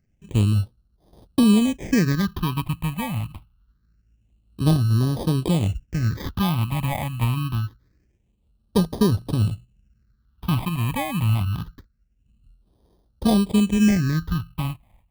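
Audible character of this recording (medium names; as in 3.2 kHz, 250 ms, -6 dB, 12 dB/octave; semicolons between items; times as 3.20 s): aliases and images of a low sample rate 1.4 kHz, jitter 0%; phasing stages 6, 0.25 Hz, lowest notch 390–2200 Hz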